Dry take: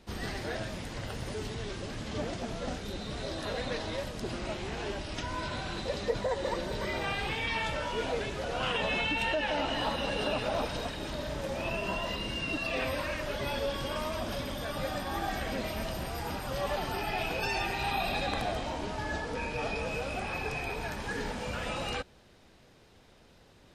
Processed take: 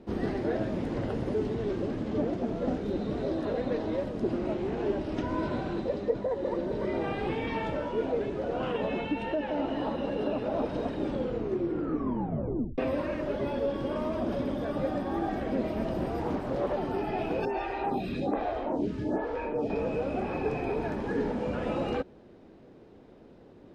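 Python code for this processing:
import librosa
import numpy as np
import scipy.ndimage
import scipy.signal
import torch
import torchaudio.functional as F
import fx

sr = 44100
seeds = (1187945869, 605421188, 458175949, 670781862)

y = fx.doppler_dist(x, sr, depth_ms=0.58, at=(16.21, 16.73))
y = fx.stagger_phaser(y, sr, hz=1.2, at=(17.45, 19.7))
y = fx.edit(y, sr, fx.tape_stop(start_s=10.98, length_s=1.8), tone=tone)
y = fx.lowpass(y, sr, hz=1700.0, slope=6)
y = fx.peak_eq(y, sr, hz=320.0, db=14.5, octaves=2.2)
y = fx.rider(y, sr, range_db=10, speed_s=0.5)
y = y * 10.0 ** (-4.5 / 20.0)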